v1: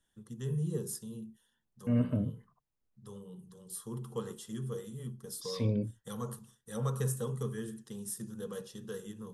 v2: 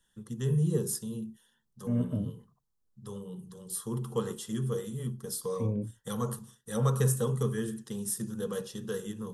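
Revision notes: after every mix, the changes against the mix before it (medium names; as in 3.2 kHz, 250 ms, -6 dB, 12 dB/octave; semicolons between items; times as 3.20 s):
first voice +6.5 dB; second voice: add tape spacing loss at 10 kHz 44 dB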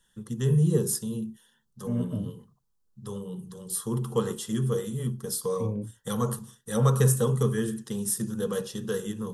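first voice +5.0 dB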